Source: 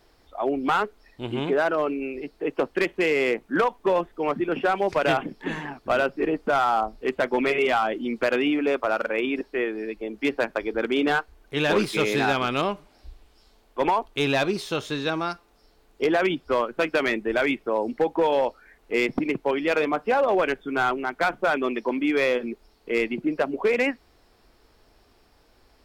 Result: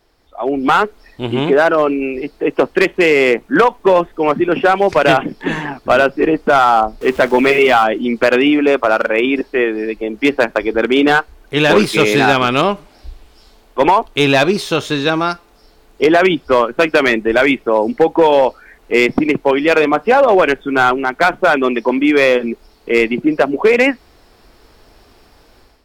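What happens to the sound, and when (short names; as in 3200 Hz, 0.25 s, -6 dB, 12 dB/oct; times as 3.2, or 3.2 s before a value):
7.01–7.84 zero-crossing step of -39.5 dBFS
whole clip: AGC gain up to 12 dB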